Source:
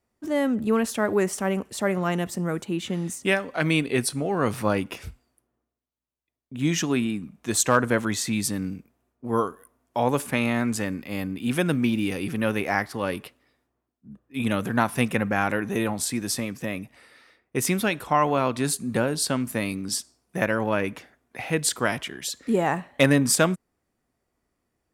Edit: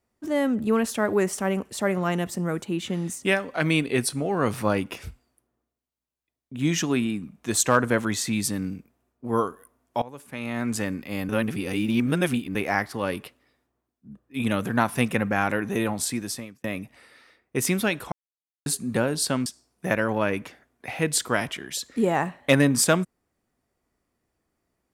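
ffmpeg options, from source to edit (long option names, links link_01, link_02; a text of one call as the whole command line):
ffmpeg -i in.wav -filter_complex "[0:a]asplit=8[link_01][link_02][link_03][link_04][link_05][link_06][link_07][link_08];[link_01]atrim=end=10.02,asetpts=PTS-STARTPTS,afade=type=out:start_time=10.016:duration=0.004:curve=hsin:silence=0.1[link_09];[link_02]atrim=start=10.02:end=11.292,asetpts=PTS-STARTPTS,afade=type=in:duration=0.74:curve=qua:silence=0.1[link_10];[link_03]atrim=start=11.288:end=12.552,asetpts=PTS-STARTPTS,areverse[link_11];[link_04]atrim=start=12.548:end=16.64,asetpts=PTS-STARTPTS,afade=type=out:start_time=3.552:duration=0.54[link_12];[link_05]atrim=start=16.64:end=18.12,asetpts=PTS-STARTPTS,afade=type=in:duration=0.004:curve=hsin,afade=type=out:start_time=1.476:duration=0.004:curve=hsin[link_13];[link_06]atrim=start=18.12:end=18.66,asetpts=PTS-STARTPTS,volume=0[link_14];[link_07]atrim=start=18.66:end=19.462,asetpts=PTS-STARTPTS,afade=type=in:duration=0.004:curve=hsin[link_15];[link_08]atrim=start=19.968[link_16];[link_09][link_10]concat=n=2:v=0:a=1[link_17];[link_17][link_11]acrossfade=duration=0.004:curve1=hsin:curve2=hsin[link_18];[link_12][link_13][link_14][link_15]concat=n=4:v=0:a=1[link_19];[link_18][link_19]acrossfade=duration=0.004:curve1=hsin:curve2=hsin[link_20];[link_20][link_16]acrossfade=duration=0.004:curve1=hsin:curve2=hsin" out.wav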